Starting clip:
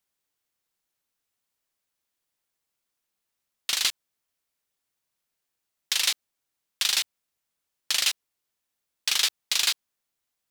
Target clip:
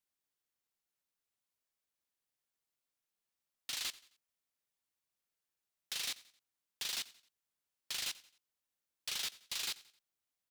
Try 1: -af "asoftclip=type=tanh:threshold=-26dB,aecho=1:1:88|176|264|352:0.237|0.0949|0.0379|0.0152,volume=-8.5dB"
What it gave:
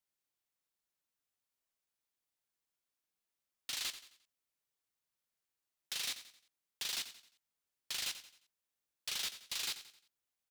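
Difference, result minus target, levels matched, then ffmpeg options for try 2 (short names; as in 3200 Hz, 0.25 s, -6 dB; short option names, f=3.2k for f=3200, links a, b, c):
echo-to-direct +7 dB
-af "asoftclip=type=tanh:threshold=-26dB,aecho=1:1:88|176|264:0.106|0.0424|0.0169,volume=-8.5dB"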